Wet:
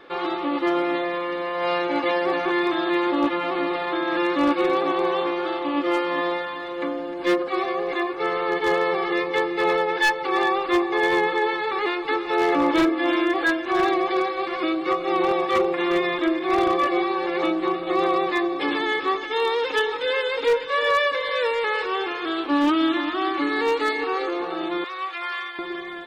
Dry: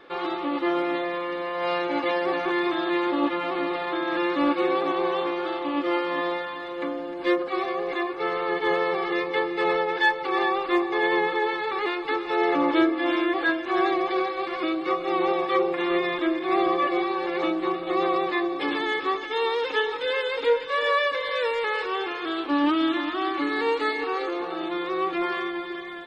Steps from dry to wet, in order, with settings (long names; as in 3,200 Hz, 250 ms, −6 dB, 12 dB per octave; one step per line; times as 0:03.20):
0:24.84–0:25.59: high-pass filter 1,200 Hz 12 dB per octave
wave folding −15.5 dBFS
level +2.5 dB